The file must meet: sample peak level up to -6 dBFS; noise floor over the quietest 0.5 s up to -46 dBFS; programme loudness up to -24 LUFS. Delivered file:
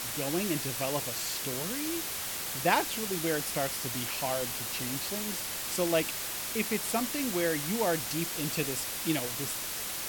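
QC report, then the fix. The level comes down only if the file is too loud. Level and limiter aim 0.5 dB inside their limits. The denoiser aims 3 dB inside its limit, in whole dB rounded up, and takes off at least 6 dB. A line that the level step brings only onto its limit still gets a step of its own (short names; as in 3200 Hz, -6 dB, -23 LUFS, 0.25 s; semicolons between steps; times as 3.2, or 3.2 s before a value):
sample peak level -9.0 dBFS: OK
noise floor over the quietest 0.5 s -36 dBFS: fail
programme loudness -30.5 LUFS: OK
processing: denoiser 13 dB, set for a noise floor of -36 dBFS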